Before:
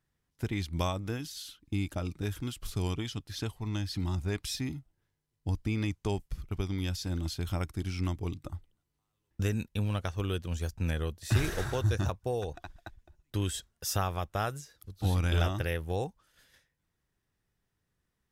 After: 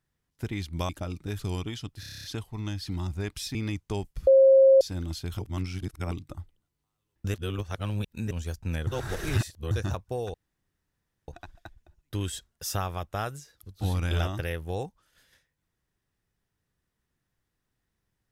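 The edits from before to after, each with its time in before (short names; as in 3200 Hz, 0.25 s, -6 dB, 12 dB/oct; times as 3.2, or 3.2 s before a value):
0.89–1.84 cut
2.34–2.71 cut
3.32 stutter 0.03 s, 9 plays
4.63–5.7 cut
6.42–6.96 bleep 536 Hz -13 dBFS
7.54–8.26 reverse
9.49–10.46 reverse
11.02–11.86 reverse
12.49 insert room tone 0.94 s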